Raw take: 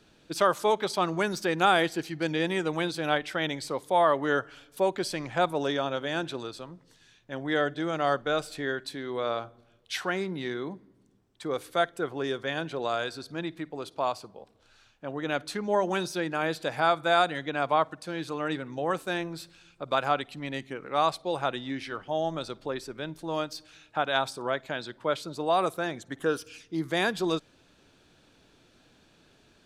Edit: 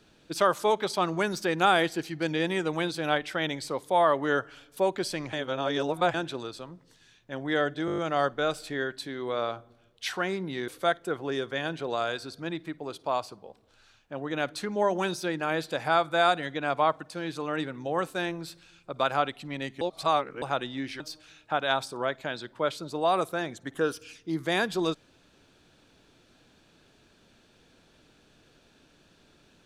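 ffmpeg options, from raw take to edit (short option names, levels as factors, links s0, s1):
-filter_complex "[0:a]asplit=13[s0][s1][s2][s3][s4][s5][s6][s7][s8][s9][s10][s11][s12];[s0]atrim=end=5.332[s13];[s1]atrim=start=5.328:end=6.142,asetpts=PTS-STARTPTS,areverse[s14];[s2]atrim=start=6.138:end=7.882[s15];[s3]atrim=start=7.858:end=7.882[s16];[s4]atrim=start=7.858:end=7.882[s17];[s5]atrim=start=7.858:end=7.882[s18];[s6]atrim=start=7.858:end=7.882[s19];[s7]atrim=start=7.858:end=7.882[s20];[s8]atrim=start=7.858:end=10.562[s21];[s9]atrim=start=11.598:end=20.732[s22];[s10]atrim=start=20.728:end=21.342,asetpts=PTS-STARTPTS,areverse[s23];[s11]atrim=start=21.338:end=21.922[s24];[s12]atrim=start=23.448[s25];[s13][s14]acrossfade=d=0.004:c1=hsin:c2=hsin[s26];[s26][s15]acrossfade=d=0.004:c1=hsin:c2=hsin[s27];[s27][s16]acrossfade=d=0.004:c1=hsin:c2=hsin[s28];[s28][s17]acrossfade=d=0.004:c1=hsin:c2=hsin[s29];[s29][s18]acrossfade=d=0.004:c1=hsin:c2=hsin[s30];[s30][s19]acrossfade=d=0.004:c1=hsin:c2=hsin[s31];[s31][s20]acrossfade=d=0.004:c1=hsin:c2=hsin[s32];[s32][s21]acrossfade=d=0.004:c1=hsin:c2=hsin[s33];[s33][s22]acrossfade=d=0.004:c1=hsin:c2=hsin[s34];[s34][s23]acrossfade=d=0.004:c1=hsin:c2=hsin[s35];[s35][s24]acrossfade=d=0.004:c1=hsin:c2=hsin[s36];[s36][s25]acrossfade=d=0.004:c1=hsin:c2=hsin"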